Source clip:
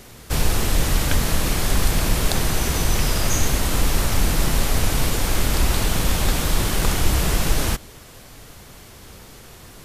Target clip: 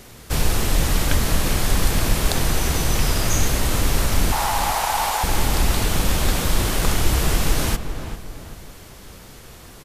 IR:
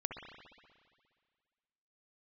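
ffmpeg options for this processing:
-filter_complex "[0:a]asettb=1/sr,asplit=3[s0][s1][s2];[s0]atrim=end=4.324[s3];[s1]atrim=start=4.32:end=5.24,asetpts=PTS-STARTPTS,afade=t=in:d=0.004:c=qsin,afade=t=out:st=0.916:d=0.004:c=qsin,highpass=f=840:t=q:w=5.8[s4];[s2]atrim=start=5.236[s5];[s3][s4]acrossfade=d=0.004:c1=hsin:c2=qsin[s6];[s6][s5]acrossfade=d=0.004:c1=qsin:c2=hsin,asplit=2[s7][s8];[s8]adelay=393,lowpass=f=1800:p=1,volume=0.376,asplit=2[s9][s10];[s10]adelay=393,lowpass=f=1800:p=1,volume=0.42,asplit=2[s11][s12];[s12]adelay=393,lowpass=f=1800:p=1,volume=0.42,asplit=2[s13][s14];[s14]adelay=393,lowpass=f=1800:p=1,volume=0.42,asplit=2[s15][s16];[s16]adelay=393,lowpass=f=1800:p=1,volume=0.42[s17];[s7][s9][s11][s13][s15][s17]amix=inputs=6:normalize=0"

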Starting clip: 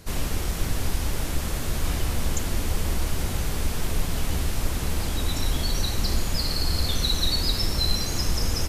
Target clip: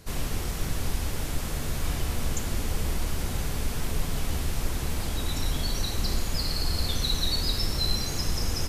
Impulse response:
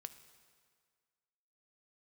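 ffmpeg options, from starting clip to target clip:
-filter_complex "[1:a]atrim=start_sample=2205[s0];[0:a][s0]afir=irnorm=-1:irlink=0,volume=1.33"

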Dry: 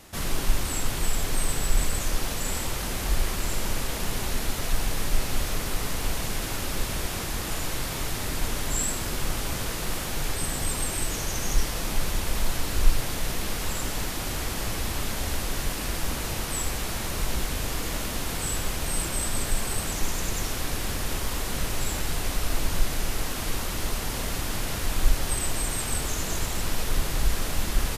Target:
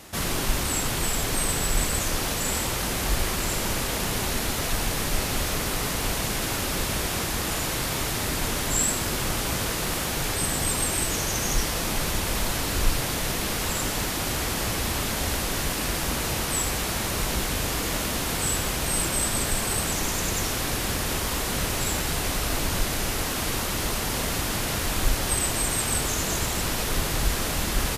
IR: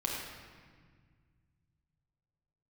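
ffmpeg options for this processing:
-af "highpass=f=67:p=1,volume=1.68"

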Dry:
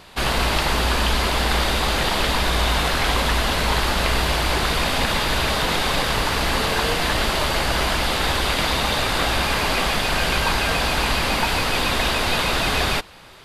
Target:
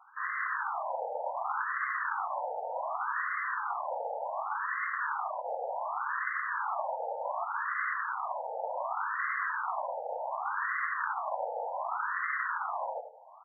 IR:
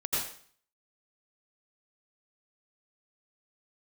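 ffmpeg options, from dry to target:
-filter_complex "[0:a]bandreject=f=89.3:t=h:w=4,bandreject=f=178.6:t=h:w=4,bandreject=f=267.9:t=h:w=4,bandreject=f=357.2:t=h:w=4,bandreject=f=446.5:t=h:w=4,bandreject=f=535.8:t=h:w=4,bandreject=f=625.1:t=h:w=4,bandreject=f=714.4:t=h:w=4,bandreject=f=803.7:t=h:w=4,bandreject=f=893:t=h:w=4,bandreject=f=982.3:t=h:w=4,bandreject=f=1071.6:t=h:w=4,bandreject=f=1160.9:t=h:w=4,bandreject=f=1250.2:t=h:w=4,bandreject=f=1339.5:t=h:w=4,bandreject=f=1428.8:t=h:w=4,bandreject=f=1518.1:t=h:w=4,bandreject=f=1607.4:t=h:w=4,bandreject=f=1696.7:t=h:w=4,bandreject=f=1786:t=h:w=4,bandreject=f=1875.3:t=h:w=4,bandreject=f=1964.6:t=h:w=4,bandreject=f=2053.9:t=h:w=4,bandreject=f=2143.2:t=h:w=4,bandreject=f=2232.5:t=h:w=4,bandreject=f=2321.8:t=h:w=4,bandreject=f=2411.1:t=h:w=4,bandreject=f=2500.4:t=h:w=4,bandreject=f=2589.7:t=h:w=4,bandreject=f=2679:t=h:w=4,bandreject=f=2768.3:t=h:w=4,bandreject=f=2857.6:t=h:w=4,bandreject=f=2946.9:t=h:w=4,bandreject=f=3036.2:t=h:w=4,bandreject=f=3125.5:t=h:w=4,bandreject=f=3214.8:t=h:w=4,bandreject=f=3304.1:t=h:w=4,bandreject=f=3393.4:t=h:w=4,areverse,acompressor=mode=upward:threshold=0.0224:ratio=2.5,areverse,highpass=f=170:t=q:w=0.5412,highpass=f=170:t=q:w=1.307,lowpass=f=2800:t=q:w=0.5176,lowpass=f=2800:t=q:w=0.7071,lowpass=f=2800:t=q:w=1.932,afreqshift=-160,aeval=exprs='abs(val(0))':c=same,asplit=2[s0][s1];[s1]aecho=0:1:78:0.316[s2];[s0][s2]amix=inputs=2:normalize=0,afftfilt=real='re*between(b*sr/1024,640*pow(1500/640,0.5+0.5*sin(2*PI*0.67*pts/sr))/1.41,640*pow(1500/640,0.5+0.5*sin(2*PI*0.67*pts/sr))*1.41)':imag='im*between(b*sr/1024,640*pow(1500/640,0.5+0.5*sin(2*PI*0.67*pts/sr))/1.41,640*pow(1500/640,0.5+0.5*sin(2*PI*0.67*pts/sr))*1.41)':win_size=1024:overlap=0.75"

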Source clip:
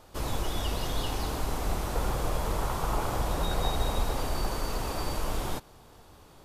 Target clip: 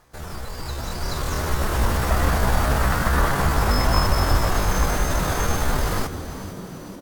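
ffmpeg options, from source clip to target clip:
-filter_complex "[0:a]dynaudnorm=f=470:g=5:m=4.47,asetrate=66075,aresample=44100,atempo=0.66742,asplit=8[s0][s1][s2][s3][s4][s5][s6][s7];[s1]adelay=407,afreqshift=-110,volume=0.224[s8];[s2]adelay=814,afreqshift=-220,volume=0.138[s9];[s3]adelay=1221,afreqshift=-330,volume=0.0861[s10];[s4]adelay=1628,afreqshift=-440,volume=0.0531[s11];[s5]adelay=2035,afreqshift=-550,volume=0.0331[s12];[s6]adelay=2442,afreqshift=-660,volume=0.0204[s13];[s7]adelay=2849,afreqshift=-770,volume=0.0127[s14];[s0][s8][s9][s10][s11][s12][s13][s14]amix=inputs=8:normalize=0,asetrate=40517,aresample=44100,volume=0.75"

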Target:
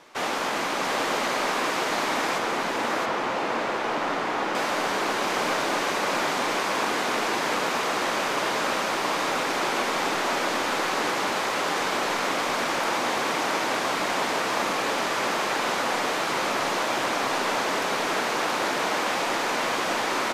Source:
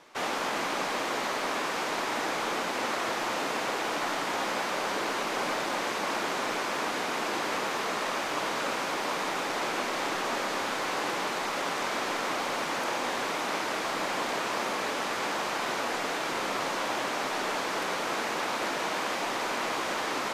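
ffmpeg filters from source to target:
-filter_complex "[0:a]asettb=1/sr,asplit=3[s0][s1][s2];[s0]atrim=end=2.384[s3];[s1]atrim=start=2.38:end=4.55,asetpts=PTS-STARTPTS,afade=t=in:d=0.004:c=qsin,afade=t=out:st=2.166:d=0.004:c=qsin,lowpass=f=2100:p=1[s4];[s2]atrim=start=4.546[s5];[s3][s4]acrossfade=d=0.004:c1=hsin:c2=qsin[s6];[s6][s5]acrossfade=d=0.004:c1=qsin:c2=hsin,aecho=1:1:674:0.668,volume=1.5"

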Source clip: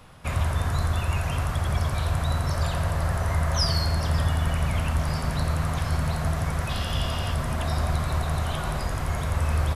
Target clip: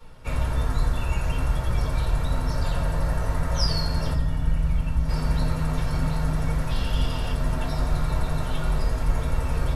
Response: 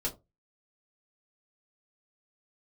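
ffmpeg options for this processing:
-filter_complex "[0:a]asettb=1/sr,asplit=3[s0][s1][s2];[s0]atrim=end=4.134[s3];[s1]atrim=start=4.13:end=5.09,asetpts=PTS-STARTPTS,afade=t=in:d=0.004:c=qsin,afade=t=out:st=0.956:d=0.004:c=qsin,acrossover=split=210[s4][s5];[s5]acompressor=threshold=0.00631:ratio=2[s6];[s4][s6]amix=inputs=2:normalize=0[s7];[s2]atrim=start=5.086[s8];[s3][s7]acrossfade=d=0.004:c1=hsin:c2=qsin[s9];[s9][s8]acrossfade=d=0.004:c1=qsin:c2=hsin[s10];[1:a]atrim=start_sample=2205[s11];[s10][s11]afir=irnorm=-1:irlink=0,volume=0.531"

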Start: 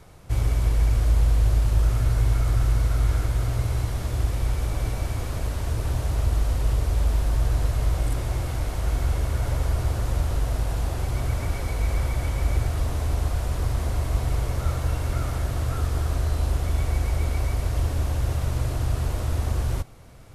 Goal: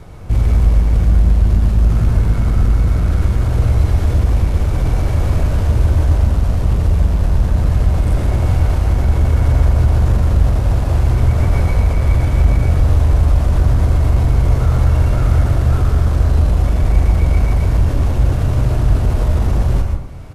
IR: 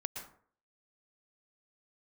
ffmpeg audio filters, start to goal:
-filter_complex "[0:a]lowshelf=f=450:g=6.5,asplit=2[s0][s1];[s1]alimiter=limit=0.178:level=0:latency=1,volume=0.794[s2];[s0][s2]amix=inputs=2:normalize=0,acontrast=70,highshelf=f=5400:g=-7,asplit=2[s3][s4];[s4]adelay=23,volume=0.237[s5];[s3][s5]amix=inputs=2:normalize=0[s6];[1:a]atrim=start_sample=2205[s7];[s6][s7]afir=irnorm=-1:irlink=0,volume=0.75"

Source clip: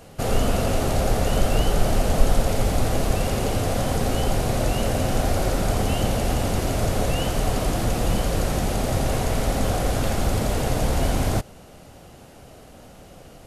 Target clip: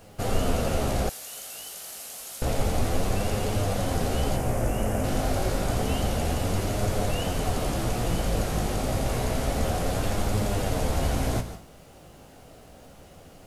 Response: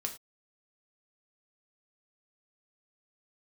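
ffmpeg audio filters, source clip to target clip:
-filter_complex "[0:a]asettb=1/sr,asplit=3[s0][s1][s2];[s0]atrim=end=4.364[s3];[s1]atrim=start=4.36:end=5.04,asetpts=PTS-STARTPTS,afade=t=in:d=0.004:c=qsin,afade=t=out:st=0.676:d=0.004:c=qsin,equalizer=f=4000:t=o:w=0.68:g=-15[s4];[s2]atrim=start=5.036[s5];[s3][s4]acrossfade=d=0.004:c1=hsin:c2=qsin[s6];[s6][s5]acrossfade=d=0.004:c1=qsin:c2=hsin,asplit=2[s7][s8];[1:a]atrim=start_sample=2205,adelay=146[s9];[s8][s9]afir=irnorm=-1:irlink=0,volume=0.251[s10];[s7][s10]amix=inputs=2:normalize=0,acrusher=bits=9:mix=0:aa=0.000001,flanger=delay=9.6:depth=9.9:regen=44:speed=0.29:shape=sinusoidal,asettb=1/sr,asplit=3[s11][s12][s13];[s11]atrim=end=1.094[s14];[s12]atrim=start=1.09:end=2.42,asetpts=PTS-STARTPTS,afade=t=in:d=0.004:c=qsin,afade=t=out:st=1.326:d=0.004:c=qsin,aderivative[s15];[s13]atrim=start=2.416[s16];[s14][s15]acrossfade=d=0.004:c1=hsin:c2=qsin[s17];[s17][s16]acrossfade=d=0.004:c1=qsin:c2=hsin"

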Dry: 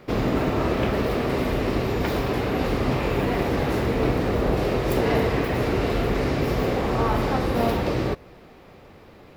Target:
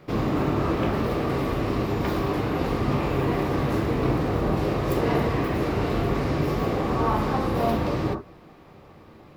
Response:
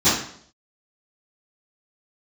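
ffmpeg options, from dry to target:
-filter_complex "[0:a]asplit=2[s0][s1];[s1]highshelf=f=1800:t=q:w=3:g=-10.5[s2];[1:a]atrim=start_sample=2205,atrim=end_sample=3528[s3];[s2][s3]afir=irnorm=-1:irlink=0,volume=0.0631[s4];[s0][s4]amix=inputs=2:normalize=0,volume=0.631"

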